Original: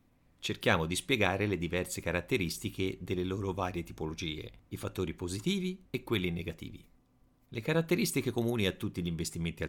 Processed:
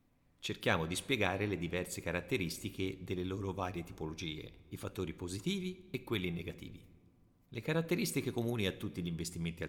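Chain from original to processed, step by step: simulated room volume 2100 m³, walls mixed, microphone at 0.31 m; trim -4.5 dB

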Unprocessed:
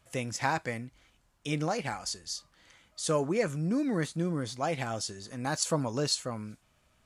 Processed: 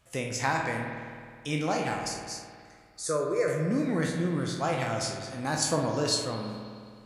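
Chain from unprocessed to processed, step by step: spectral sustain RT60 0.36 s; 2.08–3.48 s: static phaser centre 820 Hz, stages 6; spring tank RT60 2.1 s, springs 52 ms, chirp 55 ms, DRR 3 dB

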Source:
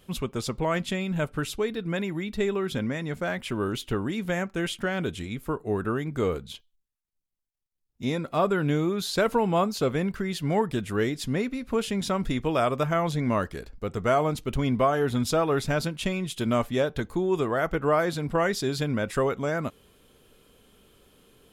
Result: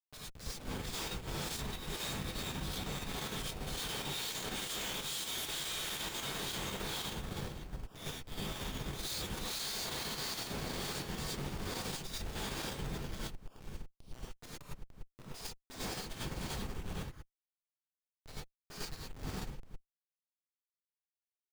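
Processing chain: Doppler pass-by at 5.58 s, 8 m/s, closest 9.3 m; inverse Chebyshev high-pass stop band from 900 Hz, stop band 70 dB; on a send: echo that smears into a reverb 504 ms, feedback 54%, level -3.5 dB; on the sum: Schmitt trigger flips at -55.5 dBFS; gated-style reverb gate 130 ms rising, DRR -7 dB; in parallel at -3 dB: level held to a coarse grid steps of 24 dB; on the sum: trim +4 dB

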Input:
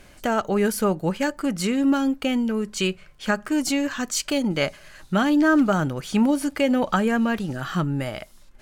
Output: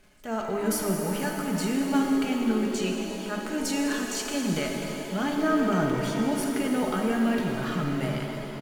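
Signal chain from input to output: companding laws mixed up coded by A; comb 4.7 ms, depth 39%; peak limiter -14.5 dBFS, peak gain reduction 6.5 dB; transient shaper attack -7 dB, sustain +6 dB; pitch-shifted reverb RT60 3.6 s, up +7 st, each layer -8 dB, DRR 0.5 dB; trim -5.5 dB

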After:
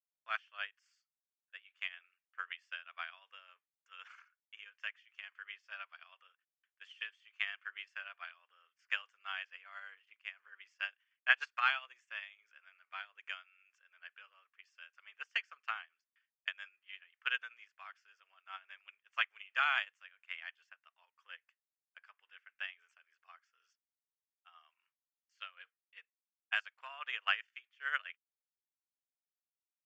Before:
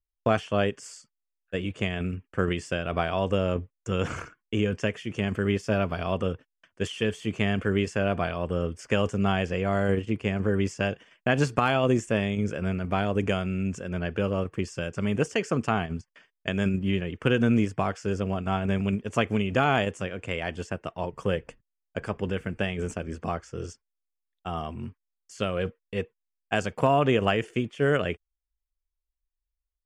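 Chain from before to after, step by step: high-pass 1.4 kHz 24 dB/octave; distance through air 200 m; upward expansion 2.5:1, over -45 dBFS; trim +6 dB

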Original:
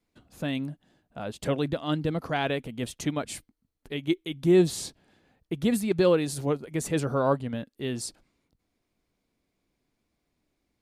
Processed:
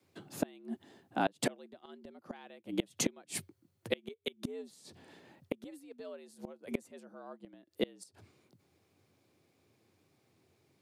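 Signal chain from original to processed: frequency shift +79 Hz; inverted gate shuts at -24 dBFS, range -31 dB; trim +6 dB

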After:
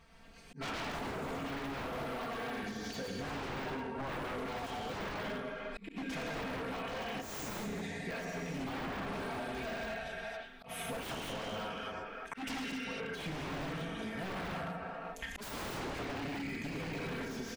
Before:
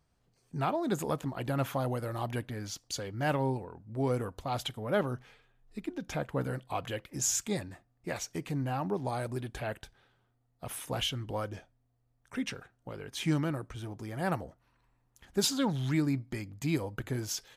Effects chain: chunks repeated in reverse 120 ms, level -2 dB; peaking EQ 2.4 kHz +9.5 dB 1.6 oct; comb 4.4 ms, depth 96%; speakerphone echo 350 ms, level -13 dB; gated-style reverb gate 300 ms flat, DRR -1 dB; wavefolder -24.5 dBFS; slow attack 611 ms; de-esser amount 95%; treble shelf 4.9 kHz -6 dB; compression 16:1, threshold -45 dBFS, peak gain reduction 17.5 dB; trim +8 dB

